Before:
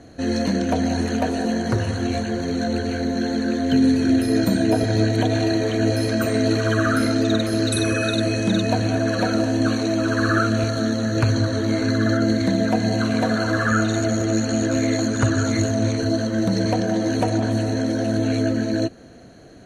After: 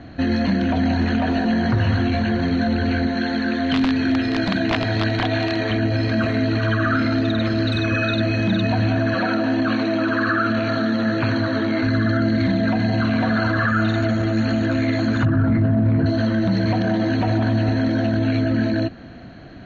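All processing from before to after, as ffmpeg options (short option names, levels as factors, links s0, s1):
-filter_complex "[0:a]asettb=1/sr,asplit=3[s0][s1][s2];[s0]atrim=end=3.074[s3];[s1]atrim=start=3.07:end=5.71,asetpts=PTS-STARTPTS,afade=t=in:d=0.004:c=qsin,afade=t=out:st=2.636:d=0.004:c=qsin,lowshelf=f=370:g=-8.5,aeval=exprs='(mod(5.31*val(0)+1,2)-1)/5.31':c=same[s4];[s2]atrim=start=5.706[s5];[s3][s4]acrossfade=d=0.004:c1=hsin:c2=qsin[s6];[s6][s5]acrossfade=d=0.004:c1=qsin:c2=hsin,asettb=1/sr,asplit=3[s7][s8][s9];[s7]atrim=end=9.144[s10];[s8]atrim=start=9.14:end=11.83,asetpts=PTS-STARTPTS,afade=t=in:d=0.004:c=qsin,afade=t=out:st=2.686:d=0.004:c=qsin,highpass=190,bass=f=250:g=-1,treble=f=4000:g=-4,aecho=1:1:90:0.178,atrim=end_sample=118629[s11];[s9]atrim=start=11.826[s12];[s10][s11]acrossfade=d=0.004:c1=hsin:c2=qsin[s13];[s13][s12]acrossfade=d=0.004:c1=qsin:c2=hsin,asettb=1/sr,asplit=3[s14][s15][s16];[s14]atrim=end=15.254[s17];[s15]atrim=start=15.25:end=16.06,asetpts=PTS-STARTPTS,afade=t=in:d=0.004:c=qsin,afade=t=out:st=0.806:d=0.004:c=qsin,lowpass=1500,equalizer=f=160:w=1.8:g=14.5[s18];[s16]atrim=start=16.056[s19];[s17][s18]acrossfade=d=0.004:c1=hsin:c2=qsin[s20];[s20][s19]acrossfade=d=0.004:c1=qsin:c2=hsin,alimiter=limit=0.126:level=0:latency=1:release=19,lowpass=f=3700:w=0.5412,lowpass=f=3700:w=1.3066,equalizer=f=460:w=1.9:g=-10.5,volume=2.51"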